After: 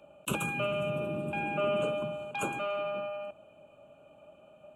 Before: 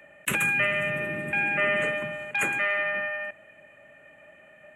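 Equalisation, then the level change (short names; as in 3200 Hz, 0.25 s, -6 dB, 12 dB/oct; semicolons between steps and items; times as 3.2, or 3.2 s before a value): Butterworth band-stop 1900 Hz, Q 1.2; high shelf 4900 Hz -9 dB; 0.0 dB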